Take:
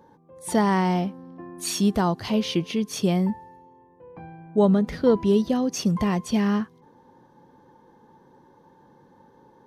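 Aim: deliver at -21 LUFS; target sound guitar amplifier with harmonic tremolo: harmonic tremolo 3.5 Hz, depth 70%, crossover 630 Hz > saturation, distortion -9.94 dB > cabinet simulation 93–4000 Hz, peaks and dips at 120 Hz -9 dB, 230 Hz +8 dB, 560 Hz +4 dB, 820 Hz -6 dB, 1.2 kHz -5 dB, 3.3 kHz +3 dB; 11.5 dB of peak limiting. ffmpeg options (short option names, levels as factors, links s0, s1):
-filter_complex "[0:a]alimiter=limit=0.112:level=0:latency=1,acrossover=split=630[s0][s1];[s0]aeval=exprs='val(0)*(1-0.7/2+0.7/2*cos(2*PI*3.5*n/s))':c=same[s2];[s1]aeval=exprs='val(0)*(1-0.7/2-0.7/2*cos(2*PI*3.5*n/s))':c=same[s3];[s2][s3]amix=inputs=2:normalize=0,asoftclip=threshold=0.0299,highpass=93,equalizer=f=120:t=q:w=4:g=-9,equalizer=f=230:t=q:w=4:g=8,equalizer=f=560:t=q:w=4:g=4,equalizer=f=820:t=q:w=4:g=-6,equalizer=f=1200:t=q:w=4:g=-5,equalizer=f=3300:t=q:w=4:g=3,lowpass=f=4000:w=0.5412,lowpass=f=4000:w=1.3066,volume=4.73"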